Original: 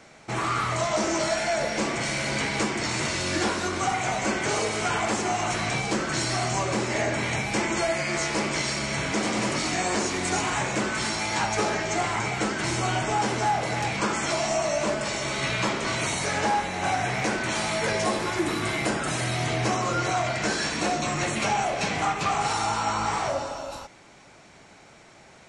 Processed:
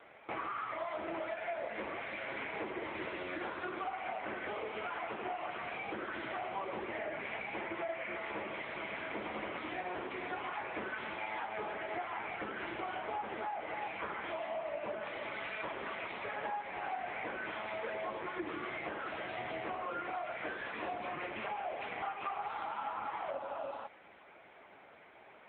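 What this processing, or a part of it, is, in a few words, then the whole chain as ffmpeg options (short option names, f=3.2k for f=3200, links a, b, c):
voicemail: -filter_complex "[0:a]asettb=1/sr,asplit=3[a][b][c];[a]atrim=end=2.524[d];[b]atrim=start=2.52:end=3.23,asetpts=PTS-STARTPTS,afade=t=in:d=0.004:c=qsin,afade=t=out:st=0.706:d=0.004:c=qsin,equalizer=f=400:w=0.83:g=5.5[e];[c]atrim=start=3.226[f];[d][e]acrossfade=d=0.004:c1=hsin:c2=qsin[g];[g][f]acrossfade=d=0.004:c1=qsin:c2=hsin,highpass=330,lowpass=3k,acompressor=threshold=-33dB:ratio=8,volume=-1dB" -ar 8000 -c:a libopencore_amrnb -b:a 6700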